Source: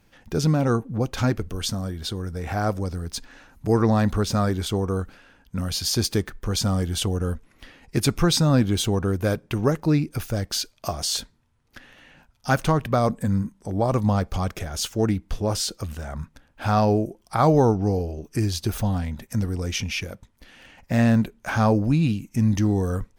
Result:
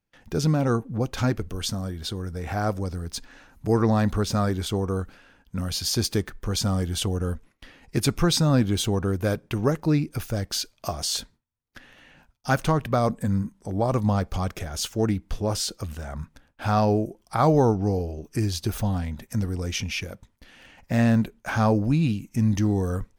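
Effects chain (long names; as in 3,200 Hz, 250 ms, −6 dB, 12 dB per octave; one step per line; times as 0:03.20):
noise gate with hold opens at −44 dBFS
level −1.5 dB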